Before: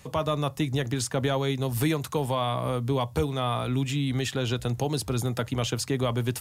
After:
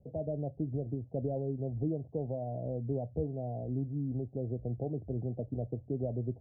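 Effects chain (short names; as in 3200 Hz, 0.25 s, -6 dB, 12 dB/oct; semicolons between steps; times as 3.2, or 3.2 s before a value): steep low-pass 710 Hz 72 dB/oct; gain -7.5 dB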